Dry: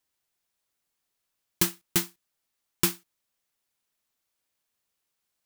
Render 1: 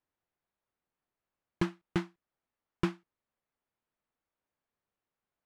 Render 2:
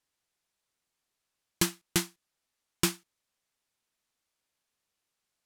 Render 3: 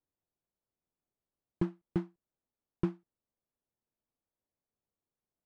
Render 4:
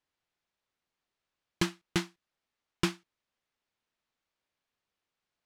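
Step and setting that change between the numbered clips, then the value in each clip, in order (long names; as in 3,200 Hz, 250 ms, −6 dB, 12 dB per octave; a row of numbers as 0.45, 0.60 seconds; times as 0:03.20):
Bessel low-pass filter, frequency: 1,300, 9,700, 510, 3,300 Hertz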